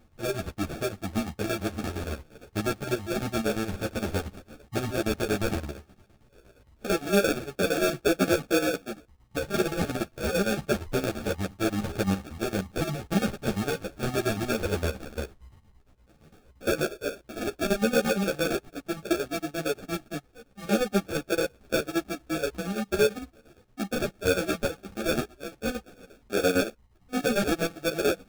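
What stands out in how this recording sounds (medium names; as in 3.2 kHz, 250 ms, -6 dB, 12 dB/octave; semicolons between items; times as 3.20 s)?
chopped level 8.7 Hz, depth 65%, duty 60%; aliases and images of a low sample rate 1 kHz, jitter 0%; a shimmering, thickened sound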